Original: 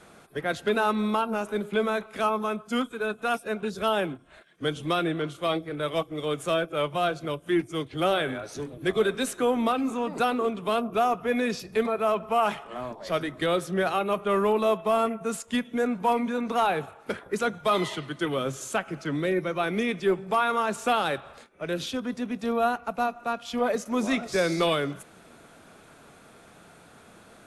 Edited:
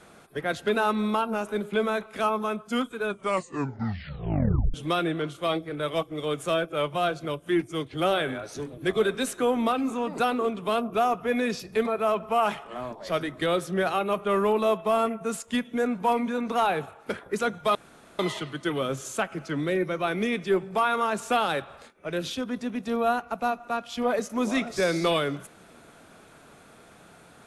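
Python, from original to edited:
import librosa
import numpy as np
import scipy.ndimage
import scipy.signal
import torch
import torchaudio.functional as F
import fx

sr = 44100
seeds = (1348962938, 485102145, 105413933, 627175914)

y = fx.edit(x, sr, fx.tape_stop(start_s=3.04, length_s=1.7),
    fx.insert_room_tone(at_s=17.75, length_s=0.44), tone=tone)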